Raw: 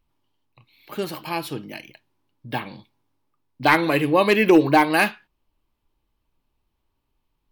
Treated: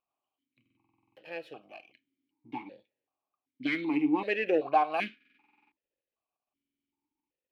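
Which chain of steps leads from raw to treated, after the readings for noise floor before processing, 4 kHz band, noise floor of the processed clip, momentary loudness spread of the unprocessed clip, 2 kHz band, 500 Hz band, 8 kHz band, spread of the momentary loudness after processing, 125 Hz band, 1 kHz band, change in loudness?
-75 dBFS, -15.0 dB, under -85 dBFS, 18 LU, -13.5 dB, -11.5 dB, under -25 dB, 17 LU, -21.5 dB, -9.5 dB, -9.5 dB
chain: half-wave gain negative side -7 dB; stuck buffer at 0.61/5.16/6.49, samples 2048, times 11; vowel sequencer 2.6 Hz; gain +1.5 dB

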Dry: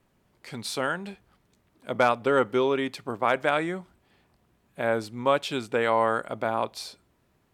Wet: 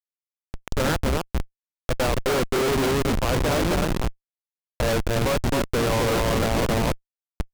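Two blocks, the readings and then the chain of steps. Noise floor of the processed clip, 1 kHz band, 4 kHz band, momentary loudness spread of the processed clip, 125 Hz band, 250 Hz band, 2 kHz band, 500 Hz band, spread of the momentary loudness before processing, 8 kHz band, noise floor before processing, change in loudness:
under -85 dBFS, -0.5 dB, +6.5 dB, 11 LU, +14.5 dB, +6.5 dB, +1.0 dB, +2.0 dB, 13 LU, +11.5 dB, -68 dBFS, +2.5 dB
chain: AGC gain up to 10 dB; limiter -6 dBFS, peak gain reduction 4 dB; air absorption 160 m; echo with dull and thin repeats by turns 0.263 s, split 1300 Hz, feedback 60%, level -3 dB; Schmitt trigger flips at -20.5 dBFS; noise-modulated delay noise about 1900 Hz, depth 0.054 ms

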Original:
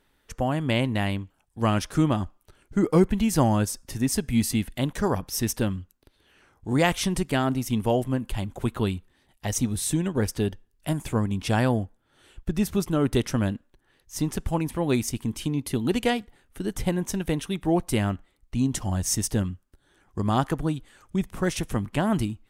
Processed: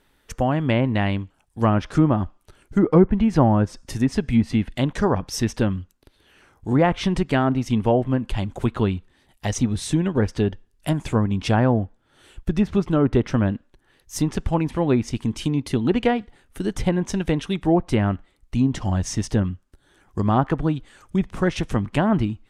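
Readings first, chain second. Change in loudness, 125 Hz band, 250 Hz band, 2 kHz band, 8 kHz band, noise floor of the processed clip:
+4.0 dB, +4.5 dB, +4.5 dB, +2.0 dB, -5.0 dB, -63 dBFS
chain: treble ducked by the level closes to 1400 Hz, closed at -17.5 dBFS; gain +4.5 dB

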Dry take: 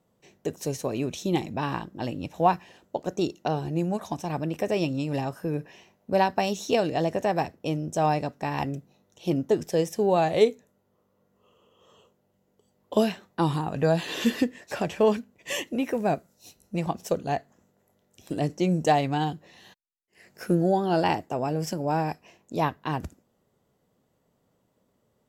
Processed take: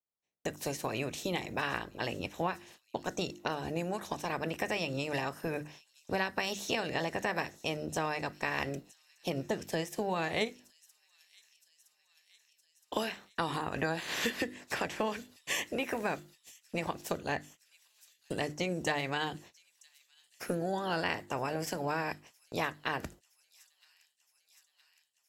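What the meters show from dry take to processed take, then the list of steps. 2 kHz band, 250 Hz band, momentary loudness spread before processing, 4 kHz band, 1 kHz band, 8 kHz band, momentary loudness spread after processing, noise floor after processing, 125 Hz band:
+1.0 dB, -10.5 dB, 10 LU, -1.5 dB, -9.0 dB, -2.5 dB, 7 LU, -74 dBFS, -11.0 dB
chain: spectral limiter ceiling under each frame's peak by 14 dB; notches 50/100/150/200/250/300/350 Hz; gate -47 dBFS, range -31 dB; compressor 5:1, threshold -27 dBFS, peak gain reduction 12.5 dB; dynamic EQ 1900 Hz, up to +6 dB, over -48 dBFS, Q 1.8; on a send: thin delay 0.966 s, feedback 71%, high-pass 5000 Hz, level -16 dB; on the sum: gain -3.5 dB

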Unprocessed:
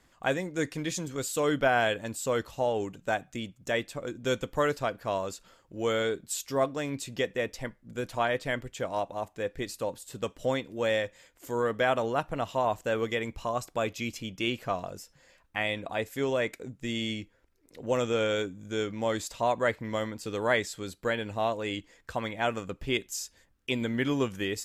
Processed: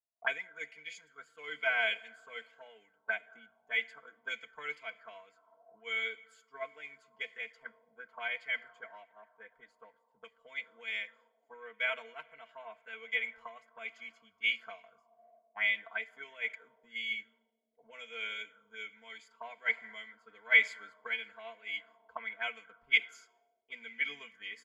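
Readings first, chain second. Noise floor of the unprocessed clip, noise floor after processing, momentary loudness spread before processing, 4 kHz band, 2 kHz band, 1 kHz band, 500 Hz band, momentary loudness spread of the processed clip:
-66 dBFS, -75 dBFS, 10 LU, -4.5 dB, +1.0 dB, -15.5 dB, -19.0 dB, 20 LU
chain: ripple EQ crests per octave 1.8, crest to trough 11 dB; Schroeder reverb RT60 3.6 s, combs from 27 ms, DRR 15.5 dB; auto-wah 610–2300 Hz, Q 4.5, up, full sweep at -25.5 dBFS; comb 4.5 ms, depth 92%; three-band expander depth 100%; gain -2.5 dB

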